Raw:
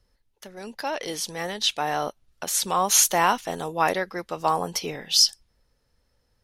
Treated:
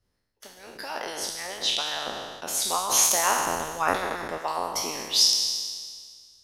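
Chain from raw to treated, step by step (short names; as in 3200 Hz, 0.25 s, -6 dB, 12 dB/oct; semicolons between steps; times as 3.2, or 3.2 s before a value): spectral trails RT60 1.86 s; 3.46–4.38 low shelf 240 Hz +10.5 dB; harmonic-percussive split harmonic -17 dB; gain -2 dB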